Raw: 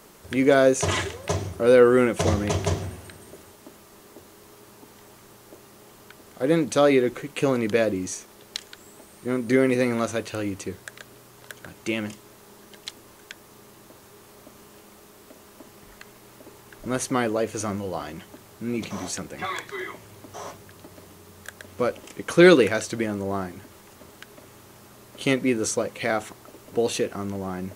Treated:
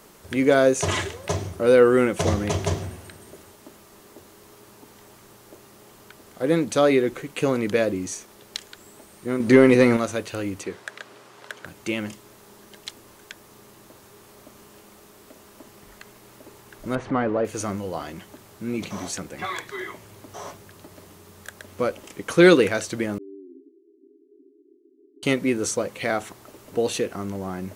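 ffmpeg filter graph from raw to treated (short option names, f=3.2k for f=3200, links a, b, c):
-filter_complex "[0:a]asettb=1/sr,asplit=3[a][b][c];[a]atrim=end=9.404[d];[b]atrim=start=9.4:end=9.97,asetpts=PTS-STARTPTS,afade=t=in:d=0.004:c=qsin,afade=t=out:st=0.566:d=0.004:c=qsin,highshelf=f=8.6k:g=-10,acontrast=85[e];[c]atrim=start=9.966[f];[d][e]acrossfade=d=0.004:c1=hsin:c2=qsin[g];[g][f]acrossfade=d=0.004:c1=qsin:c2=hsin,asettb=1/sr,asplit=3[h][i][j];[h]atrim=end=10.634[k];[i]atrim=start=10.63:end=11.65,asetpts=PTS-STARTPTS,afade=t=in:d=0.004:c=qsin,afade=t=out:st=1.016:d=0.004:c=qsin,highpass=f=540:p=1,aemphasis=mode=reproduction:type=50fm,acontrast=49[l];[j]atrim=start=11.646[m];[k][l]acrossfade=d=0.004:c1=hsin:c2=qsin[n];[n][m]acrossfade=d=0.004:c1=qsin:c2=hsin,asettb=1/sr,asplit=3[o][p][q];[o]atrim=end=16.954[r];[p]atrim=start=16.95:end=17.45,asetpts=PTS-STARTPTS,afade=t=in:d=0.004:c=qsin,afade=t=out:st=0.496:d=0.004:c=qsin,aeval=exprs='val(0)+0.5*0.0299*sgn(val(0))':c=same,lowpass=1.6k,bandreject=f=370:w=11[s];[q]atrim=start=17.446[t];[r][s]acrossfade=d=0.004:c1=hsin:c2=qsin[u];[u][t]acrossfade=d=0.004:c1=qsin:c2=hsin,asettb=1/sr,asplit=3[v][w][x];[v]atrim=end=23.184[y];[w]atrim=start=23.18:end=25.23,asetpts=PTS-STARTPTS,afade=t=in:d=0.004:c=qsin,afade=t=out:st=2.046:d=0.004:c=qsin,acompressor=threshold=-36dB:ratio=2:attack=3.2:release=140:knee=1:detection=peak,asuperpass=centerf=330:order=20:qfactor=2.1[z];[x]atrim=start=25.226[aa];[y][z]acrossfade=d=0.004:c1=hsin:c2=qsin[ab];[ab][aa]acrossfade=d=0.004:c1=qsin:c2=hsin"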